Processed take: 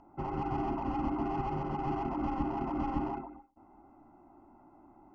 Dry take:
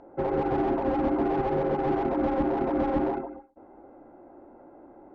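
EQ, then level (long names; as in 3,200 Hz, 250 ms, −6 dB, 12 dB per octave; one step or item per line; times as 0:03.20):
Butterworth band-reject 2,300 Hz, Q 7.9
parametric band 520 Hz −2.5 dB 2.4 octaves
phaser with its sweep stopped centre 2,500 Hz, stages 8
−1.0 dB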